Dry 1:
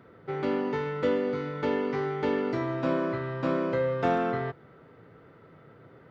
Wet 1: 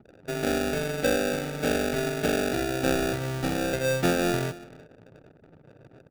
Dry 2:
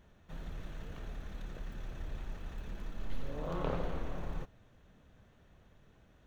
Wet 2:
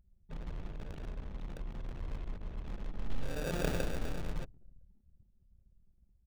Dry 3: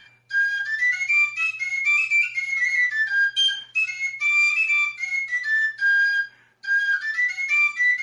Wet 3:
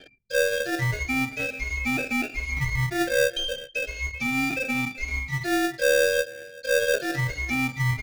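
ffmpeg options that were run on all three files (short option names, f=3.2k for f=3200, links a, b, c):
-filter_complex "[0:a]asplit=2[a][b];[b]adelay=386,lowpass=f=3.8k:p=1,volume=-20dB,asplit=2[c][d];[d]adelay=386,lowpass=f=3.8k:p=1,volume=0.19[e];[a][c][e]amix=inputs=3:normalize=0,acrossover=split=1900[f][g];[f]acrusher=samples=42:mix=1:aa=0.000001[h];[g]acompressor=threshold=-31dB:ratio=6[i];[h][i]amix=inputs=2:normalize=0,anlmdn=0.00251,aeval=exprs='0.168*(cos(1*acos(clip(val(0)/0.168,-1,1)))-cos(1*PI/2))+0.00473*(cos(6*acos(clip(val(0)/0.168,-1,1)))-cos(6*PI/2))+0.00133*(cos(8*acos(clip(val(0)/0.168,-1,1)))-cos(8*PI/2))':c=same,volume=2dB"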